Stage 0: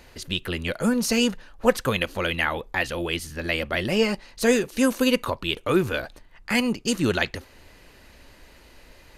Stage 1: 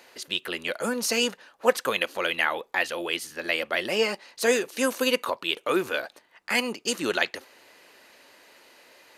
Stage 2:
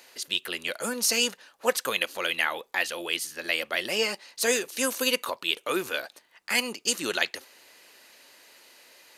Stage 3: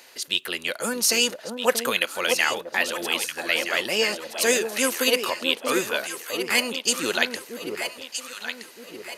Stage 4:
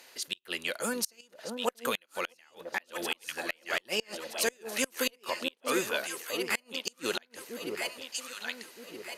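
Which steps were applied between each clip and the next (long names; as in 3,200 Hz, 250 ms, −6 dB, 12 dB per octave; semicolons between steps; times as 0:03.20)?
high-pass filter 400 Hz 12 dB per octave
high-shelf EQ 2,900 Hz +10 dB; level −4.5 dB
delay that swaps between a low-pass and a high-pass 635 ms, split 960 Hz, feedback 63%, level −5 dB; level +3.5 dB
gate with flip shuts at −9 dBFS, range −34 dB; harmonic generator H 5 −21 dB, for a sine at −5.5 dBFS; level −8 dB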